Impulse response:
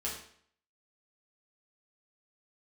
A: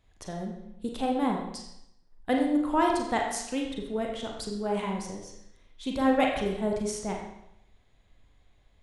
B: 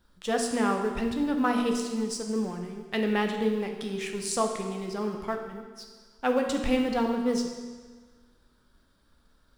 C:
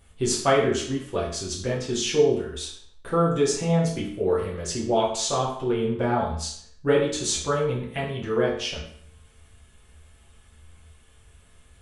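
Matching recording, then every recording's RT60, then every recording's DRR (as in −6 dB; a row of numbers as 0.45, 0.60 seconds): C; 0.80, 1.5, 0.60 seconds; 0.0, 3.0, −6.0 decibels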